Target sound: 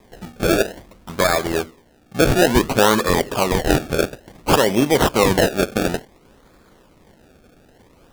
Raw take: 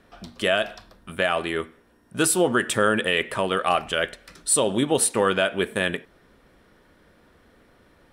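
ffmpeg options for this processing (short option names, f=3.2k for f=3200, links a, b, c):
-af "acrusher=samples=30:mix=1:aa=0.000001:lfo=1:lforange=30:lforate=0.57,volume=5.5dB"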